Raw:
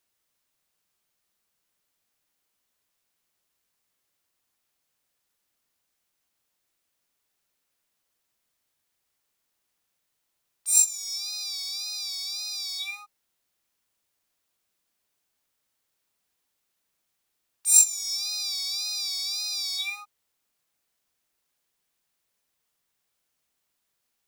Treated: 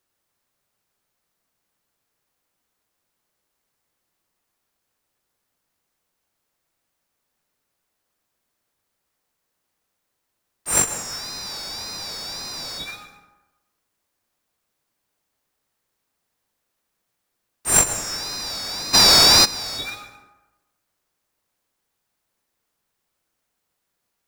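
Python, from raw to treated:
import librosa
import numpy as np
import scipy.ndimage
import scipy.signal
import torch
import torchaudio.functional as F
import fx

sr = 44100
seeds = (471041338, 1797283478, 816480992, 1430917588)

p1 = fx.sample_hold(x, sr, seeds[0], rate_hz=3900.0, jitter_pct=20)
p2 = x + (p1 * 10.0 ** (-7.5 / 20.0))
p3 = fx.rev_plate(p2, sr, seeds[1], rt60_s=1.1, hf_ratio=0.5, predelay_ms=110, drr_db=9.0)
y = fx.env_flatten(p3, sr, amount_pct=100, at=(18.93, 19.44), fade=0.02)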